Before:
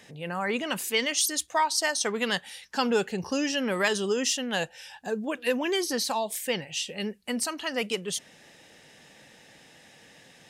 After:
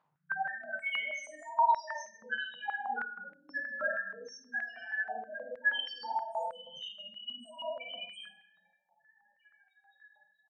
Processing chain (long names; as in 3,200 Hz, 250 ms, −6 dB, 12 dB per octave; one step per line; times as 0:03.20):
loose part that buzzes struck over −41 dBFS, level −27 dBFS
downward expander −43 dBFS
comb filter 1.3 ms, depth 87%
downward compressor 2.5 to 1, threshold −39 dBFS, peak gain reduction 14 dB
soft clipping −24.5 dBFS, distortion −25 dB
backwards echo 114 ms −7.5 dB
pitch-shifted copies added −4 semitones −10 dB
spectral peaks only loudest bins 1
high-frequency loss of the air 180 metres
rectangular room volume 220 cubic metres, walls mixed, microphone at 5.9 metres
high-pass on a step sequencer 6.3 Hz 910–2,100 Hz